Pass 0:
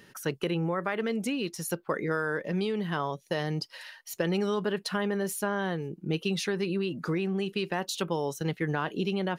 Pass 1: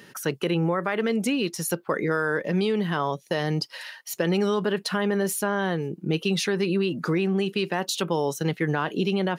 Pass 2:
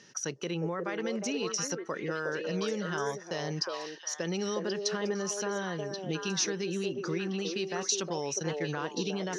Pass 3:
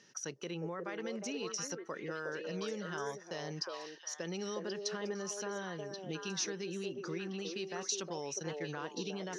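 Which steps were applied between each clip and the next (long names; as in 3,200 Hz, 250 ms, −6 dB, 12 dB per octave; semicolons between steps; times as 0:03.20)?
high-pass filter 110 Hz; in parallel at +0.5 dB: brickwall limiter −22.5 dBFS, peak gain reduction 7.5 dB
transistor ladder low-pass 6,200 Hz, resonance 80%; echo through a band-pass that steps 360 ms, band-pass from 490 Hz, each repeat 1.4 octaves, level 0 dB; level +2.5 dB
low-shelf EQ 89 Hz −7 dB; level −6.5 dB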